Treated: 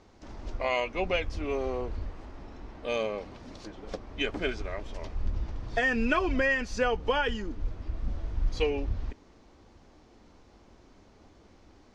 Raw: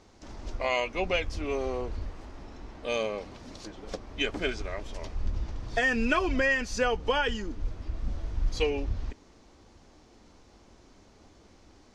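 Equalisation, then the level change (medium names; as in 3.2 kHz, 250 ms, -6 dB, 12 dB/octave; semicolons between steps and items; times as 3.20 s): treble shelf 5.7 kHz -10.5 dB; 0.0 dB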